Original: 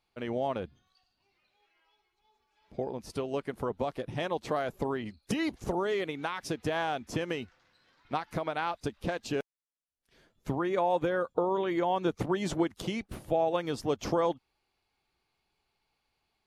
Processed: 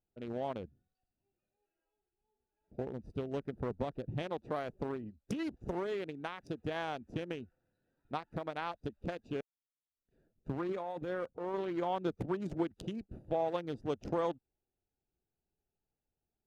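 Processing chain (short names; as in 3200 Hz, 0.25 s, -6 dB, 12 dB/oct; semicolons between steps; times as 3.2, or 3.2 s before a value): Wiener smoothing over 41 samples; 2.79–4.22 low shelf 200 Hz +7.5 dB; 10.69–11.54 negative-ratio compressor -33 dBFS, ratio -1; gain -5 dB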